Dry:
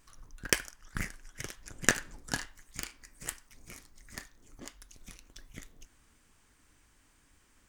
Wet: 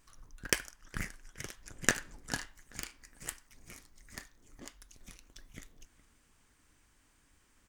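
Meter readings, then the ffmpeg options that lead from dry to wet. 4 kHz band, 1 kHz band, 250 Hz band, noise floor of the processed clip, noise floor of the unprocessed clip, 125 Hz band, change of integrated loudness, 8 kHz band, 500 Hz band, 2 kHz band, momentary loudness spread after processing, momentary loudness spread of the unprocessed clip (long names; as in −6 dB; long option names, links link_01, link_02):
−2.5 dB, −2.5 dB, −2.5 dB, −69 dBFS, −66 dBFS, −2.5 dB, −2.5 dB, −2.5 dB, −2.5 dB, −2.5 dB, 22 LU, 22 LU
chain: -filter_complex "[0:a]asplit=2[link_01][link_02];[link_02]adelay=415,lowpass=frequency=3700:poles=1,volume=-20.5dB,asplit=2[link_03][link_04];[link_04]adelay=415,lowpass=frequency=3700:poles=1,volume=0.34,asplit=2[link_05][link_06];[link_06]adelay=415,lowpass=frequency=3700:poles=1,volume=0.34[link_07];[link_01][link_03][link_05][link_07]amix=inputs=4:normalize=0,volume=-2.5dB"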